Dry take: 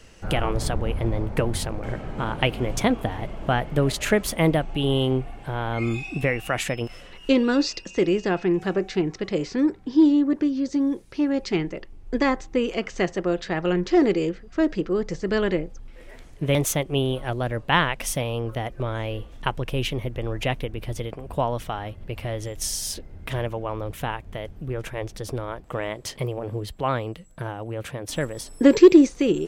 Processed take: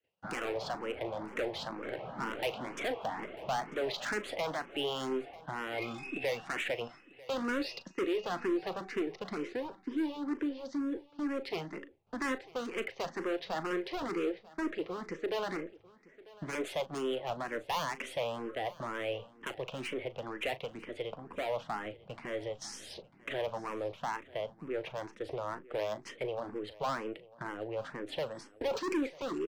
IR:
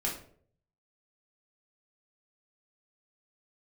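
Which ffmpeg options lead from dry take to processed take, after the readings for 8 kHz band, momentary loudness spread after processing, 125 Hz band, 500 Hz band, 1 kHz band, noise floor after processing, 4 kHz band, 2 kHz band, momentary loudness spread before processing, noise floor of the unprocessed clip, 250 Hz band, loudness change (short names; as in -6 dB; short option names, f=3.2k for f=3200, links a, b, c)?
-17.0 dB, 7 LU, -22.5 dB, -11.0 dB, -8.5 dB, -60 dBFS, -10.0 dB, -9.0 dB, 12 LU, -45 dBFS, -16.0 dB, -13.0 dB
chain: -filter_complex "[0:a]agate=range=-33dB:threshold=-32dB:ratio=3:detection=peak,acrossover=split=390|730|2000[a][b][c][d];[a]acompressor=threshold=-34dB:ratio=6[e];[e][b][c][d]amix=inputs=4:normalize=0,highpass=200,lowpass=3k,acontrast=82,volume=20dB,asoftclip=hard,volume=-20dB,aeval=exprs='0.106*(cos(1*acos(clip(val(0)/0.106,-1,1)))-cos(1*PI/2))+0.00422*(cos(6*acos(clip(val(0)/0.106,-1,1)))-cos(6*PI/2))':c=same,asplit=2[f][g];[g]adelay=38,volume=-14dB[h];[f][h]amix=inputs=2:normalize=0,aecho=1:1:945:0.0891,asplit=2[i][j];[j]afreqshift=2.1[k];[i][k]amix=inputs=2:normalize=1,volume=-8dB"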